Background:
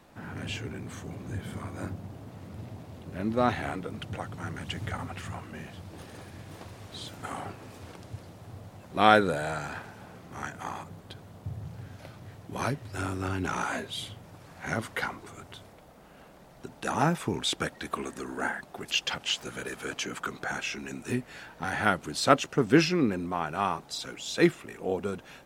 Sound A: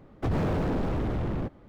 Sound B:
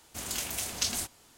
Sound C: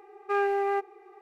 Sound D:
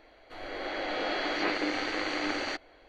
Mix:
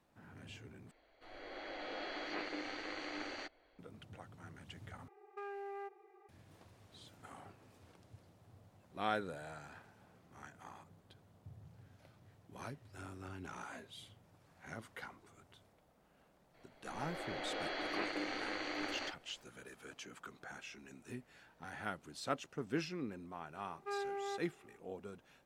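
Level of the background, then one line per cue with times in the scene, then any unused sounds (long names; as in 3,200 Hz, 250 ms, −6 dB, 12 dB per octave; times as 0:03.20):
background −17 dB
0:00.91: overwrite with D −12.5 dB
0:05.08: overwrite with C −11.5 dB + downward compressor, threshold −31 dBFS
0:16.54: mix in D −9.5 dB
0:23.57: mix in C −14.5 dB
not used: A, B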